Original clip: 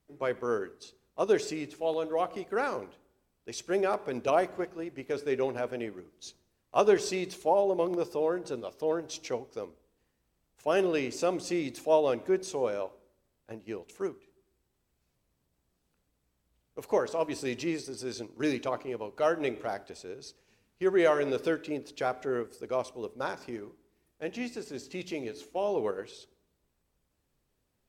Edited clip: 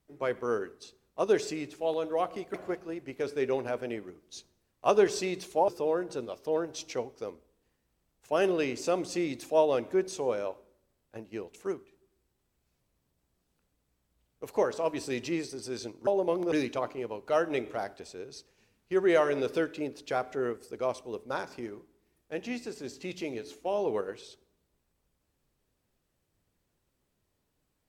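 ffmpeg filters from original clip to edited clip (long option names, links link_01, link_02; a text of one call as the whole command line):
ffmpeg -i in.wav -filter_complex "[0:a]asplit=5[link_01][link_02][link_03][link_04][link_05];[link_01]atrim=end=2.542[link_06];[link_02]atrim=start=4.438:end=7.582[link_07];[link_03]atrim=start=8.028:end=18.422[link_08];[link_04]atrim=start=7.578:end=8.032[link_09];[link_05]atrim=start=18.418[link_10];[link_06][link_07]acrossfade=duration=0.004:curve1=hsin:curve2=hsin[link_11];[link_11][link_08]acrossfade=duration=0.004:curve1=hsin:curve2=hsin[link_12];[link_12][link_09]acrossfade=duration=0.004:curve1=hsin:curve2=hsin[link_13];[link_13][link_10]acrossfade=duration=0.004:curve1=hsin:curve2=hsin" out.wav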